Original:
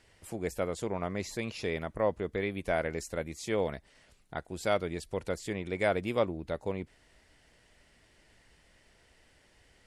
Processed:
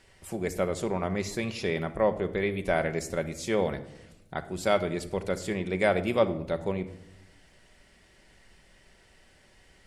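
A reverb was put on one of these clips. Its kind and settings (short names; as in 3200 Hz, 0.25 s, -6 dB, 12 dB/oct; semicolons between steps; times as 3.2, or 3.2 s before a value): shoebox room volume 2700 m³, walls furnished, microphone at 1.1 m; gain +3.5 dB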